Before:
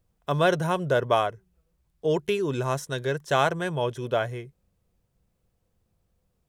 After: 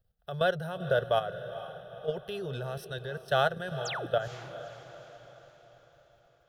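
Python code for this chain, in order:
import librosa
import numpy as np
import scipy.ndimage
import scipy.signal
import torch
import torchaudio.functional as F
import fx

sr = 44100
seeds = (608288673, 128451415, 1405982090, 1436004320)

p1 = fx.fixed_phaser(x, sr, hz=1500.0, stages=8)
p2 = fx.spec_paint(p1, sr, seeds[0], shape='fall', start_s=3.85, length_s=0.21, low_hz=260.0, high_hz=8100.0, level_db=-26.0)
p3 = fx.level_steps(p2, sr, step_db=12)
y = p3 + fx.echo_diffused(p3, sr, ms=462, feedback_pct=50, wet_db=-12.5, dry=0)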